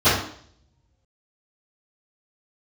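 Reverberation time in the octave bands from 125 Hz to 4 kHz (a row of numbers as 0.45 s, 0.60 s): 1.3 s, 0.65 s, 0.60 s, 0.55 s, 0.55 s, 0.60 s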